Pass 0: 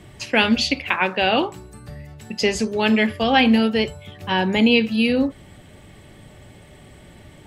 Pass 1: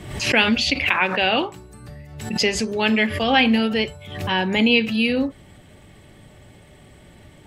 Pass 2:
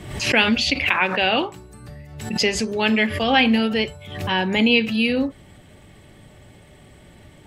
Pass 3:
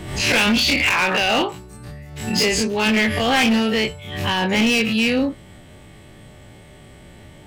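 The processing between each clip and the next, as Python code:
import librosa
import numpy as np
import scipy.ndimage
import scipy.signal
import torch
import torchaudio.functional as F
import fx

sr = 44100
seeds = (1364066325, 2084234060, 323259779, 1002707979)

y1 = fx.dynamic_eq(x, sr, hz=2400.0, q=0.95, threshold_db=-33.0, ratio=4.0, max_db=4)
y1 = fx.pre_swell(y1, sr, db_per_s=67.0)
y1 = F.gain(torch.from_numpy(y1), -2.5).numpy()
y2 = y1
y3 = fx.spec_dilate(y2, sr, span_ms=60)
y3 = np.clip(10.0 ** (13.5 / 20.0) * y3, -1.0, 1.0) / 10.0 ** (13.5 / 20.0)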